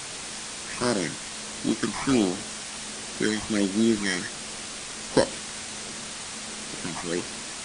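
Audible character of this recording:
aliases and images of a low sample rate 3,600 Hz, jitter 0%
phaser sweep stages 12, 1.4 Hz, lowest notch 440–2,400 Hz
a quantiser's noise floor 6 bits, dither triangular
MP3

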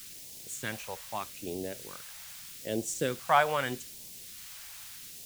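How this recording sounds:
a quantiser's noise floor 8 bits, dither triangular
phaser sweep stages 2, 0.8 Hz, lowest notch 300–1,300 Hz

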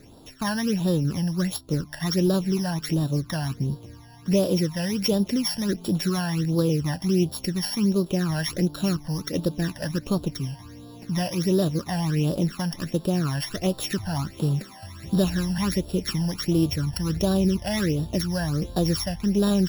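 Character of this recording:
a buzz of ramps at a fixed pitch in blocks of 8 samples
phaser sweep stages 12, 1.4 Hz, lowest notch 380–2,100 Hz

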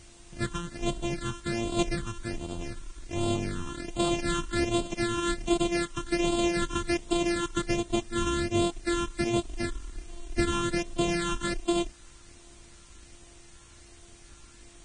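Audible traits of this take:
a buzz of ramps at a fixed pitch in blocks of 128 samples
phaser sweep stages 8, 1.3 Hz, lowest notch 620–1,800 Hz
a quantiser's noise floor 10 bits, dither triangular
Ogg Vorbis

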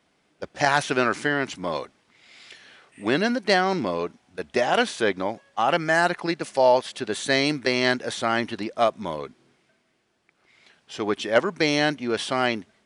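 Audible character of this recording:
background noise floor −68 dBFS
spectral slope −4.0 dB per octave

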